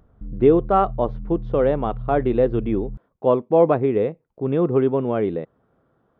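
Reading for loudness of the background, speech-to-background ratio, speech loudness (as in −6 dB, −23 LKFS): −35.0 LKFS, 14.5 dB, −20.5 LKFS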